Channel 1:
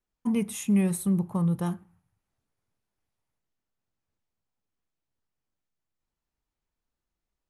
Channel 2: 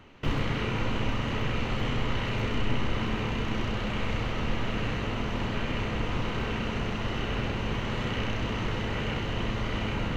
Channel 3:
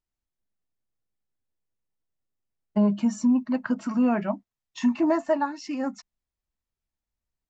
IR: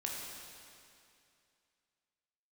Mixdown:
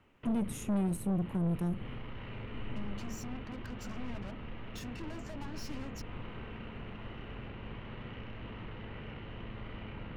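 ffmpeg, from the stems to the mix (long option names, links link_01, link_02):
-filter_complex "[0:a]volume=0.5dB[link_01];[1:a]lowpass=frequency=3300:width=0.5412,lowpass=frequency=3300:width=1.3066,volume=-12dB[link_02];[2:a]equalizer=frequency=5100:width=0.58:gain=8.5,acompressor=threshold=-28dB:ratio=6,aeval=exprs='(tanh(126*val(0)+0.7)-tanh(0.7))/126':channel_layout=same,volume=1.5dB[link_03];[link_01][link_02][link_03]amix=inputs=3:normalize=0,acrossover=split=360[link_04][link_05];[link_05]acompressor=threshold=-47dB:ratio=2.5[link_06];[link_04][link_06]amix=inputs=2:normalize=0,aeval=exprs='(tanh(25.1*val(0)+0.35)-tanh(0.35))/25.1':channel_layout=same"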